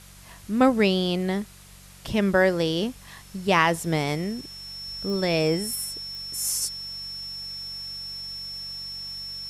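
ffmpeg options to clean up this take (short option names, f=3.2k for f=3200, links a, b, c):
-af "adeclick=t=4,bandreject=f=47.3:t=h:w=4,bandreject=f=94.6:t=h:w=4,bandreject=f=141.9:t=h:w=4,bandreject=f=189.2:t=h:w=4,bandreject=f=5.4k:w=30,afftdn=nr=22:nf=-47"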